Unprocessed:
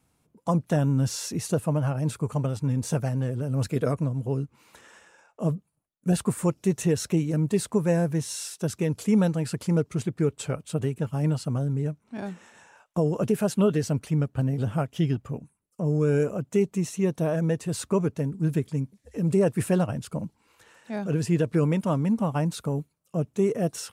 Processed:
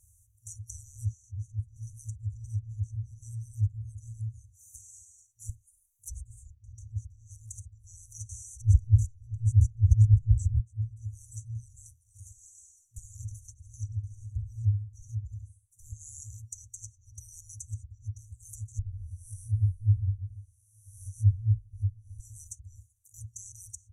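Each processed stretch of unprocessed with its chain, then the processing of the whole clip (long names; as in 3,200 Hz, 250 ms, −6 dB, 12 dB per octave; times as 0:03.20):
0:05.49–0:06.54: high-shelf EQ 5,000 Hz +10 dB + comb filter 4.9 ms, depth 94%
0:08.29–0:10.60: high-pass filter 45 Hz + parametric band 3,500 Hz −6 dB 1.8 octaves + envelope flattener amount 100%
0:12.31–0:15.93: flanger swept by the level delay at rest 5.2 ms, full sweep at −19 dBFS + repeating echo 68 ms, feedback 33%, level −8 dB
0:18.79–0:22.20: spectrum smeared in time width 385 ms + EQ curve with evenly spaced ripples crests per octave 0.89, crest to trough 18 dB + multiband upward and downward expander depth 70%
whole clip: brick-wall band-stop 110–5,800 Hz; treble cut that deepens with the level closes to 920 Hz, closed at −38.5 dBFS; level +11.5 dB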